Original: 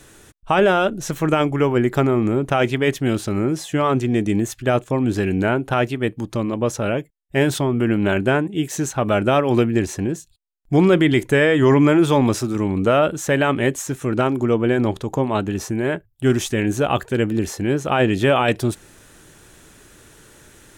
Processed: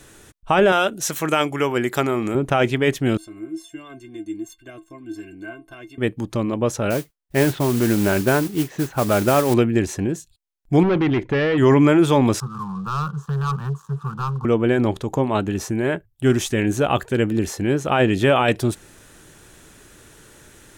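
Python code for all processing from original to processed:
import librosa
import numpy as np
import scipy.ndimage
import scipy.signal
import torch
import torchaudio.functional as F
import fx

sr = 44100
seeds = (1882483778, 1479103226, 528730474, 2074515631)

y = fx.chain(x, sr, fx.highpass(hz=47.0, slope=6),
    fx.tilt_eq(slope=2.5), at=(0.72, 2.35))
y = fx.chain(y, sr, fx.dynamic_eq(hz=770.0, q=1.3, threshold_db=-32.0, ratio=4.0, max_db=-7),
    fx.stiff_resonator(f0_hz=320.0, decay_s=0.21, stiffness=0.03), at=(3.17, 5.98))
y = fx.chain(y, sr, fx.lowpass(hz=2300.0, slope=12),
    fx.mod_noise(seeds[0], snr_db=14), at=(6.9, 9.54))
y = fx.chain(y, sr, fx.clip_hard(threshold_db=-15.0),
    fx.air_absorb(metres=250.0), at=(10.83, 11.58))
y = fx.chain(y, sr, fx.double_bandpass(hz=400.0, octaves=3.0),
    fx.leveller(passes=3),
    fx.fixed_phaser(hz=420.0, stages=8), at=(12.4, 14.45))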